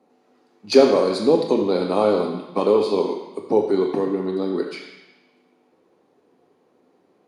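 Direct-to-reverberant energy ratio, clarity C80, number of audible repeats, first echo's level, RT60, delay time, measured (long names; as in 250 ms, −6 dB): 2.0 dB, 7.0 dB, no echo audible, no echo audible, 1.0 s, no echo audible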